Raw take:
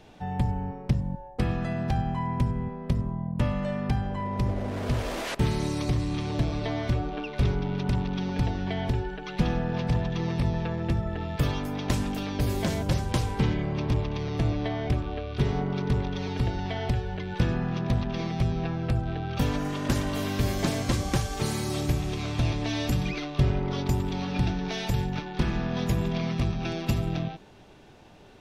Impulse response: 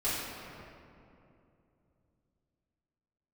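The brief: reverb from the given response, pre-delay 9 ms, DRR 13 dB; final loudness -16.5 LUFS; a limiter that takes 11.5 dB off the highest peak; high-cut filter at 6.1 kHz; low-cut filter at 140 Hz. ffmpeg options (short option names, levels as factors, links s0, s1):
-filter_complex "[0:a]highpass=140,lowpass=6100,alimiter=limit=0.0631:level=0:latency=1,asplit=2[s0][s1];[1:a]atrim=start_sample=2205,adelay=9[s2];[s1][s2]afir=irnorm=-1:irlink=0,volume=0.0841[s3];[s0][s3]amix=inputs=2:normalize=0,volume=7.08"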